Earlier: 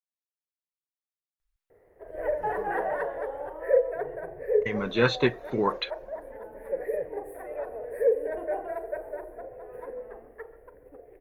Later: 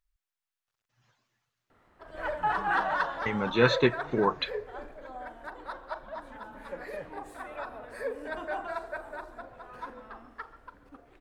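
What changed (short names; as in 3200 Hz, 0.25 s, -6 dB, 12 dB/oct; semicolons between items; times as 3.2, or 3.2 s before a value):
speech: entry -1.40 s; background: remove EQ curve 110 Hz 0 dB, 260 Hz -7 dB, 450 Hz +15 dB, 1300 Hz -15 dB, 1900 Hz 0 dB, 4000 Hz -27 dB, 7000 Hz -18 dB, 11000 Hz +9 dB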